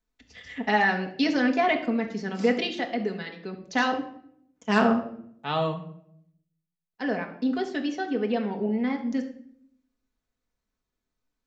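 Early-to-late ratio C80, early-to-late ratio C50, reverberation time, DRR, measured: 13.5 dB, 10.0 dB, 0.65 s, 1.5 dB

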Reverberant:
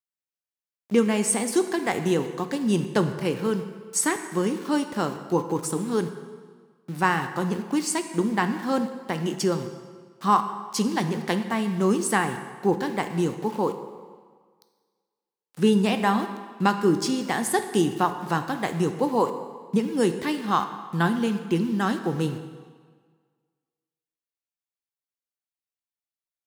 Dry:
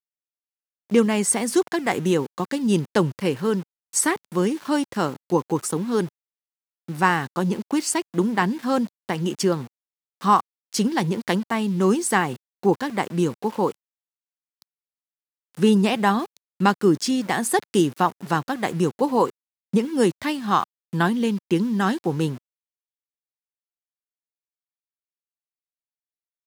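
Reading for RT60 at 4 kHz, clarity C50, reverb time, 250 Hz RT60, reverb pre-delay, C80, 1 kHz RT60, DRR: 1.3 s, 9.5 dB, 1.6 s, 1.5 s, 9 ms, 10.5 dB, 1.7 s, 8.0 dB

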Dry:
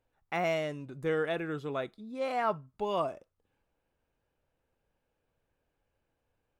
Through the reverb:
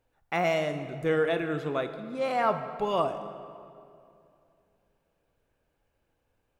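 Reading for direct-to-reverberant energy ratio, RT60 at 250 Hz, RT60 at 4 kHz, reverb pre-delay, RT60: 9.0 dB, 3.0 s, 1.6 s, 20 ms, 2.5 s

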